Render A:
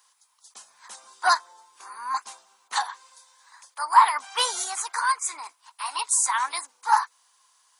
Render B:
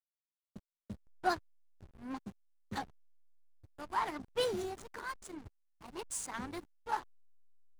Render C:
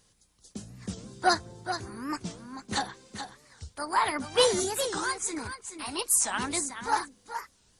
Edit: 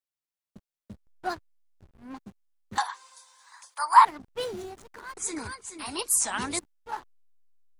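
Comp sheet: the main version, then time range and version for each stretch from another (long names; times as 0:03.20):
B
0:02.78–0:04.05: punch in from A
0:05.17–0:06.59: punch in from C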